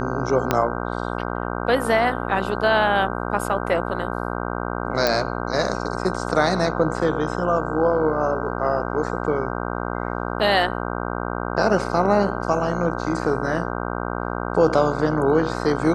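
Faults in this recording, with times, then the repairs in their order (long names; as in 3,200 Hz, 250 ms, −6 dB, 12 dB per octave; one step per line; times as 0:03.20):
mains buzz 60 Hz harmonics 26 −27 dBFS
0:00.51: click −4 dBFS
0:05.07: click −5 dBFS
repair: click removal
hum removal 60 Hz, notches 26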